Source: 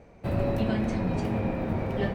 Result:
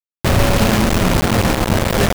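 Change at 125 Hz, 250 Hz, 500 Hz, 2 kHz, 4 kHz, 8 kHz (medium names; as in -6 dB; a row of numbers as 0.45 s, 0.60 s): +12.5 dB, +10.5 dB, +11.5 dB, +18.5 dB, +24.0 dB, no reading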